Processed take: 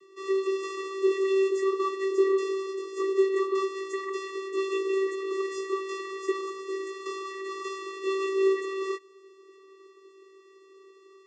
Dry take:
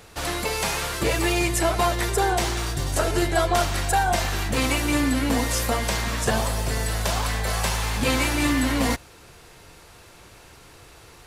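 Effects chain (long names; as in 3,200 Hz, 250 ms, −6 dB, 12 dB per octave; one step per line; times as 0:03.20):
multi-voice chorus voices 4, 0.38 Hz, delay 17 ms, depth 4 ms
channel vocoder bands 16, square 386 Hz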